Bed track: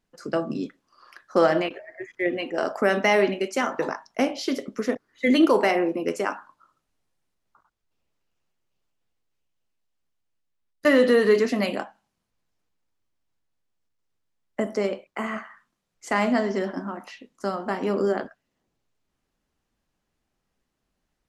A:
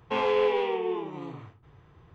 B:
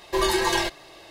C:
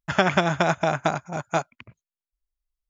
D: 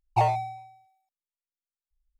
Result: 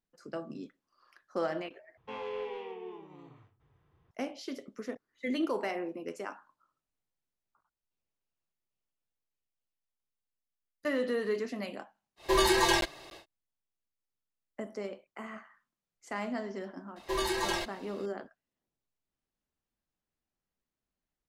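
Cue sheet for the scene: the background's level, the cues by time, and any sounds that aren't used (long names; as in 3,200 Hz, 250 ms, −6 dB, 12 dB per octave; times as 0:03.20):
bed track −13.5 dB
0:01.97: overwrite with A −14 dB
0:12.16: mix in B −2.5 dB, fades 0.10 s + regular buffer underruns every 0.29 s zero
0:16.96: mix in B −9 dB
not used: C, D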